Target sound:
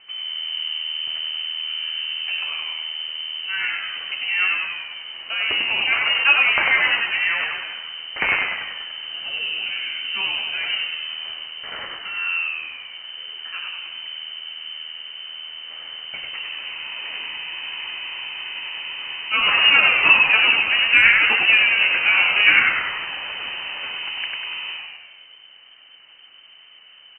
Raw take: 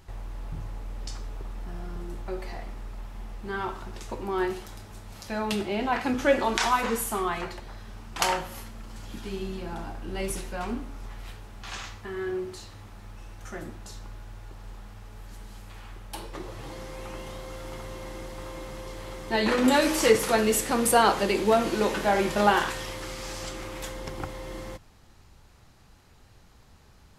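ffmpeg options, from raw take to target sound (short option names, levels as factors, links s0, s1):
-filter_complex "[0:a]asplit=9[s0][s1][s2][s3][s4][s5][s6][s7][s8];[s1]adelay=97,afreqshift=79,volume=0.668[s9];[s2]adelay=194,afreqshift=158,volume=0.389[s10];[s3]adelay=291,afreqshift=237,volume=0.224[s11];[s4]adelay=388,afreqshift=316,volume=0.13[s12];[s5]adelay=485,afreqshift=395,volume=0.0759[s13];[s6]adelay=582,afreqshift=474,volume=0.0437[s14];[s7]adelay=679,afreqshift=553,volume=0.0254[s15];[s8]adelay=776,afreqshift=632,volume=0.0148[s16];[s0][s9][s10][s11][s12][s13][s14][s15][s16]amix=inputs=9:normalize=0,lowpass=f=2600:t=q:w=0.5098,lowpass=f=2600:t=q:w=0.6013,lowpass=f=2600:t=q:w=0.9,lowpass=f=2600:t=q:w=2.563,afreqshift=-3100,volume=1.78"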